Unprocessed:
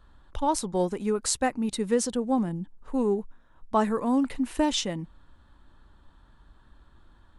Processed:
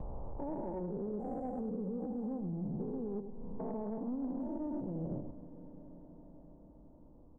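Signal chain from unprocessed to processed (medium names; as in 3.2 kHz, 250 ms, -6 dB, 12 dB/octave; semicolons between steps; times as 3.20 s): spectrogram pixelated in time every 400 ms; inverse Chebyshev low-pass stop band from 1.6 kHz, stop band 40 dB; gate with hold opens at -47 dBFS; compression 4:1, threshold -45 dBFS, peak gain reduction 14.5 dB; peak limiter -42.5 dBFS, peak gain reduction 8.5 dB; delay 99 ms -9 dB; saturation -39 dBFS, distortion -26 dB; reverberation RT60 5.8 s, pre-delay 35 ms, DRR 14.5 dB; three bands compressed up and down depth 40%; trim +10.5 dB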